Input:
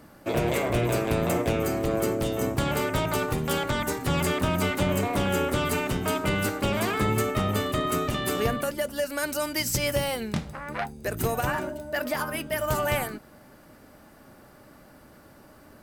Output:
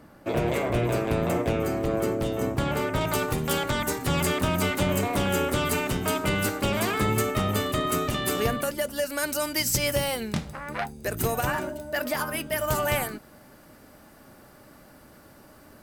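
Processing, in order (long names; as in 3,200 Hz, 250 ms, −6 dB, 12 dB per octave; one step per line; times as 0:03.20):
high-shelf EQ 3,600 Hz −6 dB, from 0:03.01 +3.5 dB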